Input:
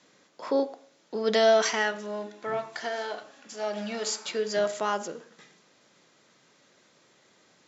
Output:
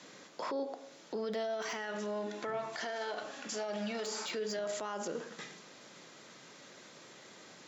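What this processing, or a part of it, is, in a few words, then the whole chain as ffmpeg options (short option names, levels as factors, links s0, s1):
podcast mastering chain: -af "highpass=96,deesser=0.9,acompressor=threshold=0.0112:ratio=2.5,alimiter=level_in=4.47:limit=0.0631:level=0:latency=1:release=52,volume=0.224,volume=2.51" -ar 44100 -c:a libmp3lame -b:a 96k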